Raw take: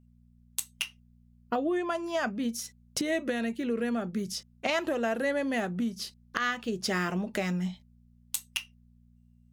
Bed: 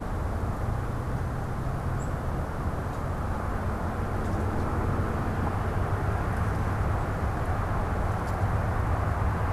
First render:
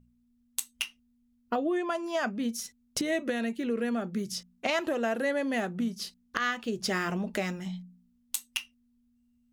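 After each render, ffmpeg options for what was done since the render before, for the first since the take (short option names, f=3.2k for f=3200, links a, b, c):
-af "bandreject=f=60:t=h:w=4,bandreject=f=120:t=h:w=4,bandreject=f=180:t=h:w=4"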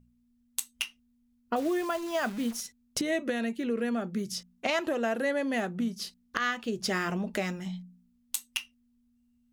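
-filter_complex "[0:a]asettb=1/sr,asplit=3[a][b][c];[a]atrim=end=1.564[d];[b]atrim=start=1.56:end=2.61,asetpts=PTS-STARTPTS,afade=t=in:d=0.004:c=qsin,afade=t=out:st=1.046:d=0.004:c=qsin,acrusher=bits=8:dc=4:mix=0:aa=0.000001[e];[c]atrim=start=2.606[f];[d][e]acrossfade=d=0.004:c1=hsin:c2=qsin[g];[g][f]acrossfade=d=0.004:c1=qsin:c2=hsin"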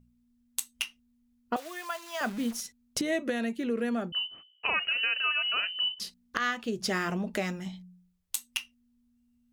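-filter_complex "[0:a]asettb=1/sr,asplit=3[a][b][c];[a]atrim=end=1.564[d];[b]atrim=start=1.56:end=2.21,asetpts=PTS-STARTPTS,afade=t=in:d=0.004:c=qsin,afade=t=out:st=0.646:d=0.004:c=qsin,highpass=990[e];[c]atrim=start=2.206[f];[d][e]acrossfade=d=0.004:c1=hsin:c2=qsin[g];[g][f]acrossfade=d=0.004:c1=qsin:c2=hsin,asettb=1/sr,asplit=3[h][i][j];[h]atrim=end=4.124[k];[i]atrim=start=4.12:end=6,asetpts=PTS-STARTPTS,afade=t=in:d=0.004:c=qsin,afade=t=out:st=1.876:d=0.004:c=qsin,lowpass=f=2.7k:t=q:w=0.5098,lowpass=f=2.7k:t=q:w=0.6013,lowpass=f=2.7k:t=q:w=0.9,lowpass=f=2.7k:t=q:w=2.563,afreqshift=-3200[l];[j]atrim=start=5.996[m];[k][l]acrossfade=d=0.004:c1=hsin:c2=qsin[n];[n][m]acrossfade=d=0.004:c1=qsin:c2=hsin,asettb=1/sr,asplit=3[o][p][q];[o]atrim=end=7.674[r];[p]atrim=start=7.67:end=8.35,asetpts=PTS-STARTPTS,afade=t=in:d=0.004:c=qsin,afade=t=out:st=0.676:d=0.004:c=qsin,bandreject=f=60:t=h:w=6,bandreject=f=120:t=h:w=6,bandreject=f=180:t=h:w=6,bandreject=f=240:t=h:w=6,bandreject=f=300:t=h:w=6,bandreject=f=360:t=h:w=6,bandreject=f=420:t=h:w=6,bandreject=f=480:t=h:w=6[s];[q]atrim=start=8.346[t];[r][s]acrossfade=d=0.004:c1=hsin:c2=qsin[u];[u][t]acrossfade=d=0.004:c1=qsin:c2=hsin"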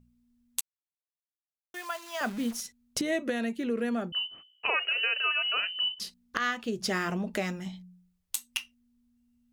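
-filter_complex "[0:a]asettb=1/sr,asplit=3[a][b][c];[a]atrim=end=4.694[d];[b]atrim=start=4.69:end=5.57,asetpts=PTS-STARTPTS,afade=t=in:d=0.004:c=qsin,afade=t=out:st=0.876:d=0.004:c=qsin,lowshelf=f=290:t=q:w=3:g=-13.5[e];[c]atrim=start=5.566[f];[d][e]acrossfade=d=0.004:c1=hsin:c2=qsin[g];[g][f]acrossfade=d=0.004:c1=qsin:c2=hsin,asplit=3[h][i][j];[h]atrim=end=0.61,asetpts=PTS-STARTPTS,afade=t=out:st=0.606:d=0.004:c=hsin[k];[i]atrim=start=0.61:end=1.74,asetpts=PTS-STARTPTS,volume=0[l];[j]atrim=start=1.74,asetpts=PTS-STARTPTS,afade=t=in:d=0.004:c=hsin[m];[k][l][m]concat=n=3:v=0:a=1"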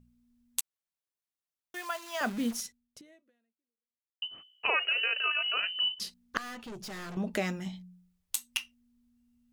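-filter_complex "[0:a]asettb=1/sr,asplit=3[a][b][c];[a]atrim=end=5.004[d];[b]atrim=start=5:end=5.64,asetpts=PTS-STARTPTS,afade=t=in:d=0.004:c=qsin,afade=t=out:st=0.636:d=0.004:c=qsin,tremolo=f=54:d=0.4[e];[c]atrim=start=5.636[f];[d][e]acrossfade=d=0.004:c1=hsin:c2=qsin[g];[g][f]acrossfade=d=0.004:c1=qsin:c2=hsin,asettb=1/sr,asplit=3[h][i][j];[h]atrim=end=6.374[k];[i]atrim=start=6.37:end=7.17,asetpts=PTS-STARTPTS,afade=t=in:d=0.004:c=qsin,afade=t=out:st=0.796:d=0.004:c=qsin,aeval=exprs='(tanh(100*val(0)+0.25)-tanh(0.25))/100':c=same[l];[j]atrim=start=7.166[m];[k][l]acrossfade=d=0.004:c1=hsin:c2=qsin[n];[n][m]acrossfade=d=0.004:c1=qsin:c2=hsin,asplit=2[o][p];[o]atrim=end=4.22,asetpts=PTS-STARTPTS,afade=t=out:st=2.65:d=1.57:c=exp[q];[p]atrim=start=4.22,asetpts=PTS-STARTPTS,afade=t=in:d=0.004:c=hsin[r];[q][r]concat=n=2:v=0:a=1"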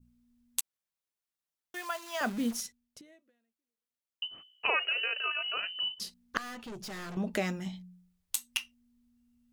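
-af "adynamicequalizer=threshold=0.00794:dfrequency=2300:dqfactor=0.71:tfrequency=2300:tqfactor=0.71:attack=5:release=100:ratio=0.375:range=2.5:mode=cutabove:tftype=bell"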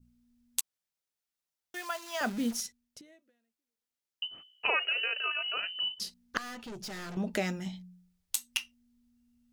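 -af "equalizer=f=5.3k:w=1.5:g=2.5,bandreject=f=1.1k:w=14"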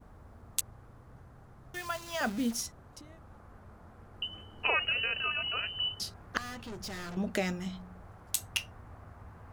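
-filter_complex "[1:a]volume=-23.5dB[a];[0:a][a]amix=inputs=2:normalize=0"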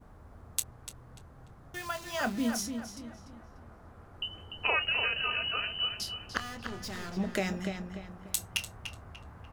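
-filter_complex "[0:a]asplit=2[a][b];[b]adelay=26,volume=-13dB[c];[a][c]amix=inputs=2:normalize=0,asplit=2[d][e];[e]adelay=294,lowpass=f=3.8k:p=1,volume=-7dB,asplit=2[f][g];[g]adelay=294,lowpass=f=3.8k:p=1,volume=0.39,asplit=2[h][i];[i]adelay=294,lowpass=f=3.8k:p=1,volume=0.39,asplit=2[j][k];[k]adelay=294,lowpass=f=3.8k:p=1,volume=0.39,asplit=2[l][m];[m]adelay=294,lowpass=f=3.8k:p=1,volume=0.39[n];[d][f][h][j][l][n]amix=inputs=6:normalize=0"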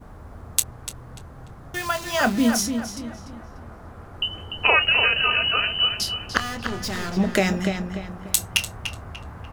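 -af "volume=11dB"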